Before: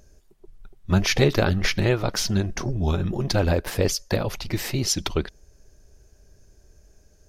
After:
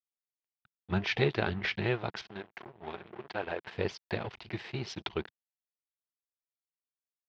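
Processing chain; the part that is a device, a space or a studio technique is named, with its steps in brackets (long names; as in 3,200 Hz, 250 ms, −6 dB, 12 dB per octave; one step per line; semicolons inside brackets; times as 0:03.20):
0:02.21–0:03.67: bass and treble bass −14 dB, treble −12 dB
blown loudspeaker (dead-zone distortion −34.5 dBFS; loudspeaker in its box 140–3,600 Hz, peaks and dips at 170 Hz −4 dB, 270 Hz −10 dB, 550 Hz −8 dB, 1,200 Hz −4 dB)
level −4.5 dB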